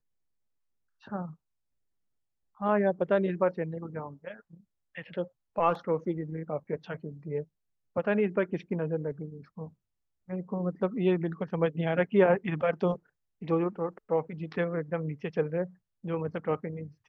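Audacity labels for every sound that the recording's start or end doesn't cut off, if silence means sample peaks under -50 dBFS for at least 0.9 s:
1.030000	1.340000	sound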